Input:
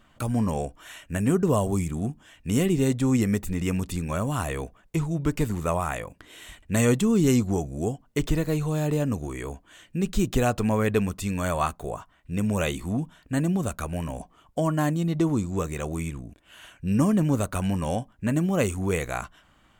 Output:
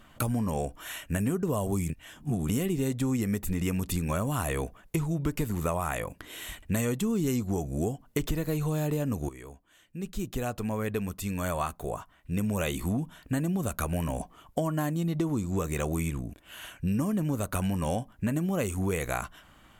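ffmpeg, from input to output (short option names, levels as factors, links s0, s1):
-filter_complex "[0:a]asplit=4[s0][s1][s2][s3];[s0]atrim=end=1.902[s4];[s1]atrim=start=1.898:end=2.492,asetpts=PTS-STARTPTS,areverse[s5];[s2]atrim=start=2.488:end=9.29,asetpts=PTS-STARTPTS,afade=t=out:st=6.798:d=0.004:c=hsin:silence=0.177828[s6];[s3]atrim=start=9.29,asetpts=PTS-STARTPTS,afade=t=in:d=3.65:c=qua:silence=0.177828[s7];[s4][s5]acrossfade=d=0.004:c1=hsin:c2=hsin[s8];[s6][s7]concat=n=2:v=0:a=1[s9];[s8][s9]acrossfade=d=0.004:c1=hsin:c2=hsin,acompressor=threshold=0.0355:ratio=6,equalizer=f=12000:w=2.5:g=10,volume=1.5"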